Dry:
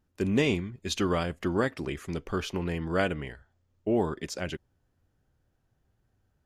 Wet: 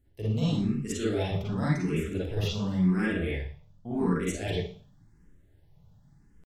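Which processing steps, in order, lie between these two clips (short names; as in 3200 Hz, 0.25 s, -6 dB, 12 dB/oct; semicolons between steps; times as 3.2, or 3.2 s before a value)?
tone controls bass +11 dB, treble +8 dB; reverse; compressor 5:1, threshold -30 dBFS, peak gain reduction 14 dB; reverse; pitch shift +2 st; reverb RT60 0.45 s, pre-delay 38 ms, DRR -8 dB; endless phaser +0.91 Hz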